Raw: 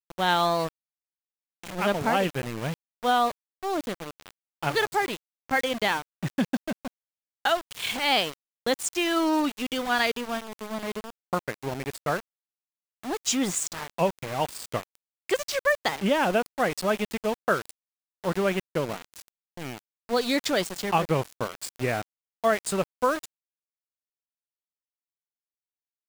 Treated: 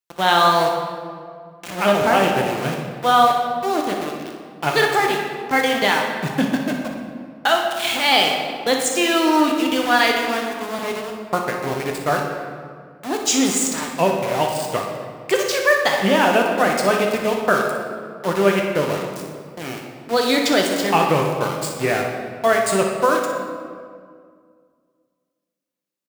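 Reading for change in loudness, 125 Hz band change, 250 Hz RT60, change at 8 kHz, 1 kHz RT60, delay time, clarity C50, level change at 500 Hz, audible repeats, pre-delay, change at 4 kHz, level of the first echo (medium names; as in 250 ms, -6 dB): +8.0 dB, +6.0 dB, 2.5 s, +8.0 dB, 1.9 s, 60 ms, 2.5 dB, +8.5 dB, 1, 3 ms, +8.5 dB, -9.5 dB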